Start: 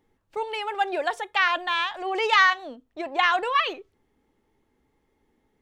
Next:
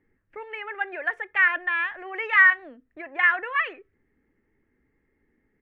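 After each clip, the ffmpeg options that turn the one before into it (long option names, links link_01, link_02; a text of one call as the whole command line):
ffmpeg -i in.wav -filter_complex "[0:a]firequalizer=gain_entry='entry(300,0);entry(870,-11);entry(1800,7);entry(3800,-24);entry(5400,-26)':delay=0.05:min_phase=1,acrossover=split=550[link_01][link_02];[link_01]acompressor=threshold=-45dB:ratio=6[link_03];[link_03][link_02]amix=inputs=2:normalize=0" out.wav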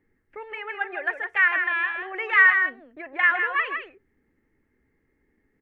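ffmpeg -i in.wav -af "aecho=1:1:160:0.473" out.wav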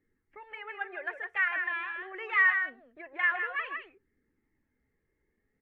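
ffmpeg -i in.wav -af "flanger=delay=0.5:depth=1.5:regen=-55:speed=0.48:shape=triangular,volume=-4dB" -ar 44100 -c:a libvorbis -b:a 96k out.ogg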